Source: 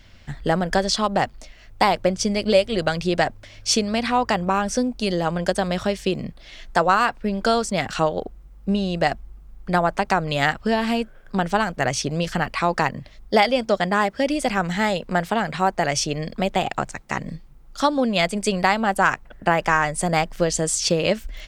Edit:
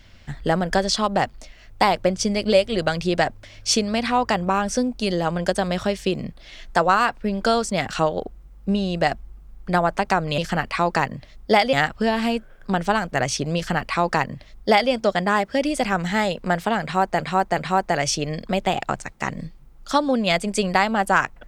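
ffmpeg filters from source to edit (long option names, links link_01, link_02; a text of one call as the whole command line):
ffmpeg -i in.wav -filter_complex "[0:a]asplit=5[link_01][link_02][link_03][link_04][link_05];[link_01]atrim=end=10.382[link_06];[link_02]atrim=start=12.208:end=13.562[link_07];[link_03]atrim=start=10.378:end=15.852[link_08];[link_04]atrim=start=15.468:end=15.852[link_09];[link_05]atrim=start=15.468[link_10];[link_06][link_07]acrossfade=duration=0.004:curve1=hsin:curve2=hsin[link_11];[link_11][link_08]acrossfade=duration=0.004:curve1=hsin:curve2=hsin[link_12];[link_12][link_09]acrossfade=duration=0.004:curve1=hsin:curve2=hsin[link_13];[link_13][link_10]acrossfade=duration=0.004:curve1=hsin:curve2=hsin" out.wav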